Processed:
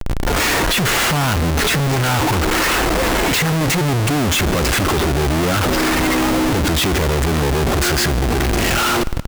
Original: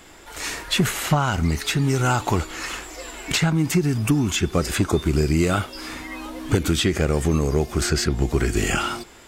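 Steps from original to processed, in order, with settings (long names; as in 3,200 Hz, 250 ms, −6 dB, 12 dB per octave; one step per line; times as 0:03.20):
low-pass filter 3,800 Hz 6 dB per octave
comparator with hysteresis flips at −39.5 dBFS
repeating echo 152 ms, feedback 40%, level −21.5 dB
level +6 dB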